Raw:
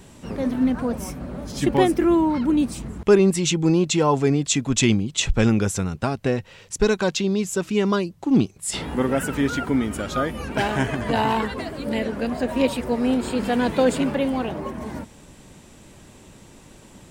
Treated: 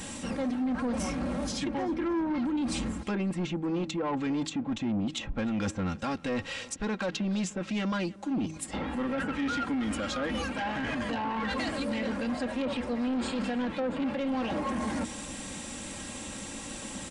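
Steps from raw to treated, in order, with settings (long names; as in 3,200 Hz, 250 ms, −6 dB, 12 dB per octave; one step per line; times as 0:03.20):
RIAA equalisation recording
notch filter 400 Hz, Q 12
treble cut that deepens with the level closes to 1,000 Hz, closed at −15.5 dBFS
bass and treble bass +10 dB, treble −7 dB
comb filter 3.7 ms, depth 56%
hum removal 158.3 Hz, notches 2
reversed playback
downward compressor 4 to 1, threshold −32 dBFS, peak gain reduction 16.5 dB
reversed playback
brickwall limiter −26.5 dBFS, peak gain reduction 7.5 dB
soft clipping −32.5 dBFS, distortion −14 dB
on a send: tape delay 308 ms, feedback 58%, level −18.5 dB, low-pass 4,300 Hz
on the sum: downsampling to 22,050 Hz
level +7 dB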